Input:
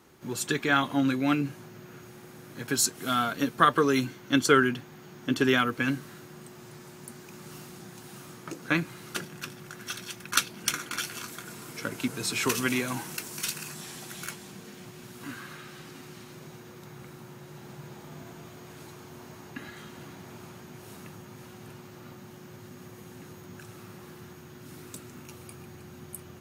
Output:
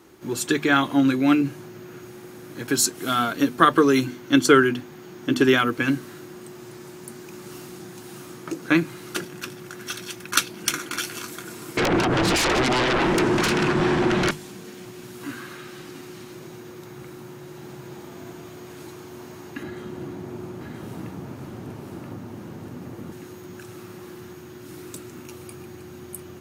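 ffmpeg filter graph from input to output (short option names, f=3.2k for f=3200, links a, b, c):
-filter_complex "[0:a]asettb=1/sr,asplit=3[a][b][c];[a]atrim=end=11.774[d];[b]atrim=start=11.77:end=14.31,asetpts=PTS-STARTPTS,afade=t=in:d=0.004:c=qsin,afade=t=out:st=2.536:d=0.004:c=qsin,lowpass=1.6k,acompressor=threshold=-34dB:ratio=5:attack=3.2:release=140:knee=1:detection=peak,aeval=exprs='0.075*sin(PI/2*8.91*val(0)/0.075)':c=same[e];[c]atrim=start=14.306[f];[d][e]acrossfade=d=0.004:c1=hsin:c2=qsin[g];[g][f]acrossfade=d=0.004:c1=qsin:c2=hsin,asettb=1/sr,asplit=3[h][i][j];[h]atrim=end=19.634[k];[i]atrim=start=19.63:end=23.12,asetpts=PTS-STARTPTS,afade=t=in:d=0.004:c=qsin,afade=t=out:st=3.486:d=0.004:c=qsin,tiltshelf=f=1.1k:g=6,aecho=1:1:978:0.708,atrim=end_sample=153909[l];[j]atrim=start=23.116[m];[k][l]acrossfade=d=0.004:c1=hsin:c2=qsin[n];[n][m]acrossfade=d=0.004:c1=qsin:c2=hsin,equalizer=f=330:t=o:w=0.43:g=7.5,bandreject=f=50:t=h:w=6,bandreject=f=100:t=h:w=6,bandreject=f=150:t=h:w=6,bandreject=f=200:t=h:w=6,bandreject=f=250:t=h:w=6,volume=4dB"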